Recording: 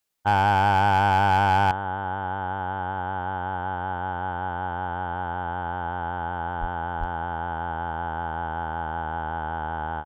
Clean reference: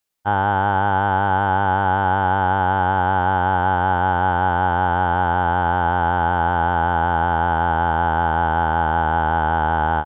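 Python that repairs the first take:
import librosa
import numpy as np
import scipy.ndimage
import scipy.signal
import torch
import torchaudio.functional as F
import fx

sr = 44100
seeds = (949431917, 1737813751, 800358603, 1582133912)

y = fx.fix_declip(x, sr, threshold_db=-14.0)
y = fx.highpass(y, sr, hz=140.0, slope=24, at=(6.6, 6.72), fade=0.02)
y = fx.highpass(y, sr, hz=140.0, slope=24, at=(6.99, 7.11), fade=0.02)
y = fx.fix_level(y, sr, at_s=1.71, step_db=11.0)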